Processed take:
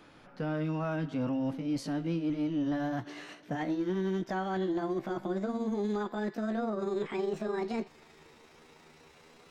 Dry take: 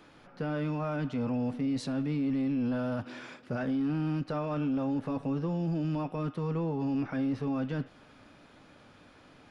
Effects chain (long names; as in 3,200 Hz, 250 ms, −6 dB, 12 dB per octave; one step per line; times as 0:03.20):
pitch glide at a constant tempo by +8.5 semitones starting unshifted